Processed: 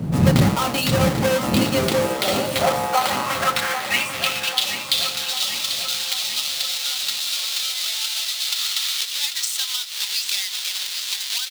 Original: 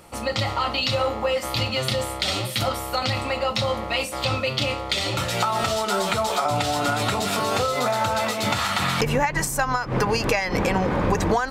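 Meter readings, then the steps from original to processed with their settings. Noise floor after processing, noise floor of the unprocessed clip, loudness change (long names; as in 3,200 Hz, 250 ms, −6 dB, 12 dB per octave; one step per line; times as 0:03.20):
−29 dBFS, −32 dBFS, +2.5 dB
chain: each half-wave held at its own peak
wind on the microphone 95 Hz −14 dBFS
high-pass filter sweep 160 Hz → 3,800 Hz, 0:01.13–0:04.72
on a send: repeating echo 792 ms, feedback 57%, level −9.5 dB
on the sum: level −2 dB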